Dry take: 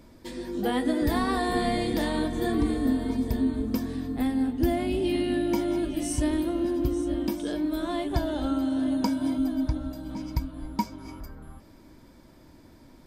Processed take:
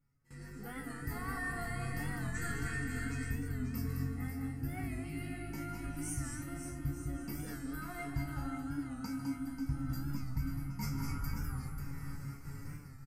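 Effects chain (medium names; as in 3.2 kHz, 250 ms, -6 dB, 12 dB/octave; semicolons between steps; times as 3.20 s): reverse; compression 16:1, threshold -39 dBFS, peak gain reduction 22 dB; reverse; vibrato 2.3 Hz 37 cents; level rider gain up to 11.5 dB; gate with hold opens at -31 dBFS; static phaser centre 1.5 kHz, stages 4; feedback comb 140 Hz, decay 0.36 s, harmonics all, mix 90%; time-frequency box 2.35–3.29 s, 1.3–8.7 kHz +11 dB; comb 1.5 ms, depth 66%; multi-tap echo 149/207/540 ms -13/-6/-8.5 dB; on a send at -23 dB: reverberation RT60 0.30 s, pre-delay 3 ms; on the sum: warped record 45 rpm, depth 100 cents; trim +7 dB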